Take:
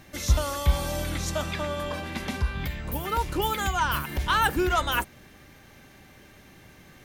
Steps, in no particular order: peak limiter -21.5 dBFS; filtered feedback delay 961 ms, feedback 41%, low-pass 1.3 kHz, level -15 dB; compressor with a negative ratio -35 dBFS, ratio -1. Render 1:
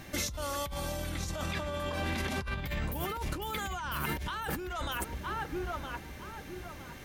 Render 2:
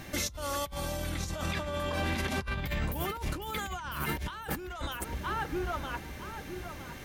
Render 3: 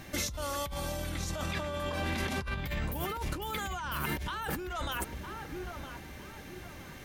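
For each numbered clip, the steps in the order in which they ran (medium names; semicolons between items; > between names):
filtered feedback delay > peak limiter > compressor with a negative ratio; filtered feedback delay > compressor with a negative ratio > peak limiter; peak limiter > filtered feedback delay > compressor with a negative ratio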